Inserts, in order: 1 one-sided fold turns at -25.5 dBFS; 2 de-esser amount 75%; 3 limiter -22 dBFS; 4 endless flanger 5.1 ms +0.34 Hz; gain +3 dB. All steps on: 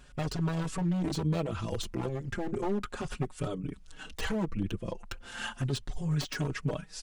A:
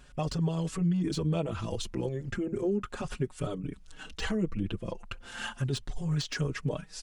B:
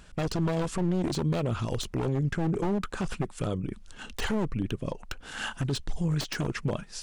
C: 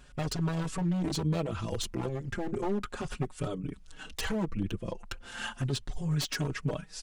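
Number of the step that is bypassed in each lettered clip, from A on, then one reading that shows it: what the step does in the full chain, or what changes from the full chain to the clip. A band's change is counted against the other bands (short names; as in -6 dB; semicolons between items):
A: 1, distortion -6 dB; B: 4, crest factor change -4.0 dB; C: 2, 8 kHz band +3.0 dB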